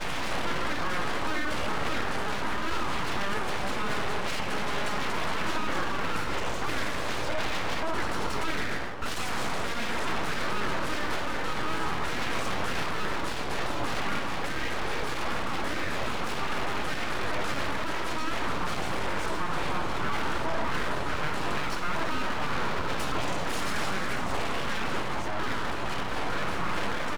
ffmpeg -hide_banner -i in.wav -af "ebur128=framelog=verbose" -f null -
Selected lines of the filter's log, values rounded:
Integrated loudness:
  I:         -31.0 LUFS
  Threshold: -41.0 LUFS
Loudness range:
  LRA:         0.7 LU
  Threshold: -51.0 LUFS
  LRA low:   -31.4 LUFS
  LRA high:  -30.7 LUFS